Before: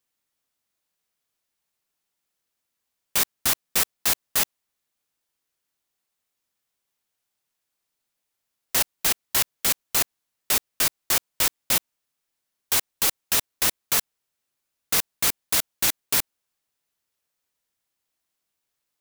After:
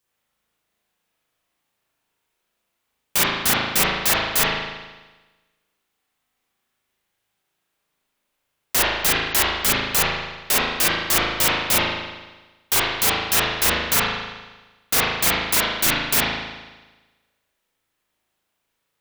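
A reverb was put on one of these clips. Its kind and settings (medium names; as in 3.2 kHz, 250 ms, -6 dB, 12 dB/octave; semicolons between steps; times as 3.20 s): spring tank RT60 1.2 s, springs 37 ms, chirp 45 ms, DRR -7 dB; trim +2 dB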